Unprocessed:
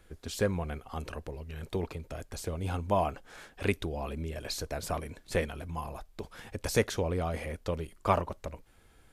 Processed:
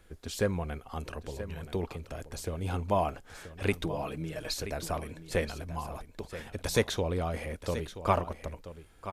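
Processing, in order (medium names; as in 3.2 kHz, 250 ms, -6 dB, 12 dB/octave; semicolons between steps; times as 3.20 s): 3.73–4.54 s: comb 6.4 ms, depth 73%; 6.52–7.20 s: peaking EQ 3.7 kHz +9 dB 0.22 oct; delay 979 ms -12.5 dB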